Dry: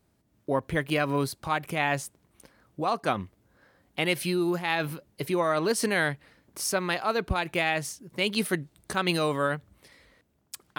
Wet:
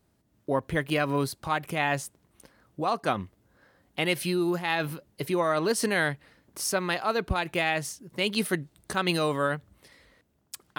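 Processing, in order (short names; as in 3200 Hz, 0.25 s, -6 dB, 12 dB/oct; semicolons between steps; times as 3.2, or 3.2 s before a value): notch 2300 Hz, Q 29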